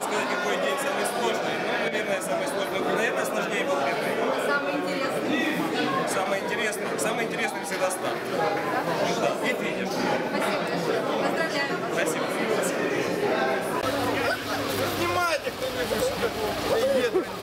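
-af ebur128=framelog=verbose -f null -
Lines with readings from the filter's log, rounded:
Integrated loudness:
  I:         -25.9 LUFS
  Threshold: -35.9 LUFS
Loudness range:
  LRA:         0.8 LU
  Threshold: -45.9 LUFS
  LRA low:   -26.4 LUFS
  LRA high:  -25.5 LUFS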